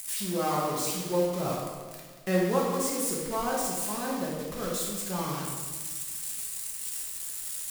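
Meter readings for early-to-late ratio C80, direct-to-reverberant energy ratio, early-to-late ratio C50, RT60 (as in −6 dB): 2.5 dB, −4.5 dB, 1.0 dB, 1.5 s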